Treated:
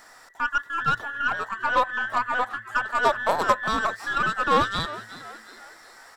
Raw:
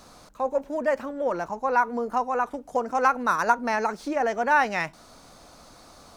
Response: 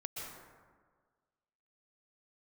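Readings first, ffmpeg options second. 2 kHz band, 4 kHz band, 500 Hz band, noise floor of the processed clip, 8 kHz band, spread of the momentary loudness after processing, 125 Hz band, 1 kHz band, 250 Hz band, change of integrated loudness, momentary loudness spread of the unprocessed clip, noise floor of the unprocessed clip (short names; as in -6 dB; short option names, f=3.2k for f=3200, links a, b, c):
+3.5 dB, +10.5 dB, -3.5 dB, -50 dBFS, +0.5 dB, 10 LU, +7.5 dB, +0.5 dB, -4.0 dB, +1.0 dB, 7 LU, -52 dBFS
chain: -filter_complex "[0:a]afftfilt=real='real(if(between(b,1,1012),(2*floor((b-1)/92)+1)*92-b,b),0)':imag='imag(if(between(b,1,1012),(2*floor((b-1)/92)+1)*92-b,b),0)*if(between(b,1,1012),-1,1)':win_size=2048:overlap=0.75,aeval=exprs='0.447*(cos(1*acos(clip(val(0)/0.447,-1,1)))-cos(1*PI/2))+0.1*(cos(2*acos(clip(val(0)/0.447,-1,1)))-cos(2*PI/2))+0.0316*(cos(8*acos(clip(val(0)/0.447,-1,1)))-cos(8*PI/2))':c=same,asplit=2[a][b];[b]asplit=4[c][d][e][f];[c]adelay=365,afreqshift=110,volume=-16dB[g];[d]adelay=730,afreqshift=220,volume=-22.4dB[h];[e]adelay=1095,afreqshift=330,volume=-28.8dB[i];[f]adelay=1460,afreqshift=440,volume=-35.1dB[j];[g][h][i][j]amix=inputs=4:normalize=0[k];[a][k]amix=inputs=2:normalize=0"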